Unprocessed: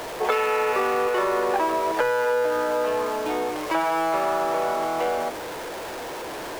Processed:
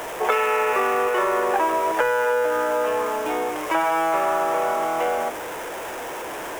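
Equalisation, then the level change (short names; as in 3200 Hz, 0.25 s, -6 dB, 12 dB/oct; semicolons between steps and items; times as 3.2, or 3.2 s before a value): low shelf 470 Hz -6.5 dB; bell 4300 Hz -12.5 dB 0.48 oct; +4.0 dB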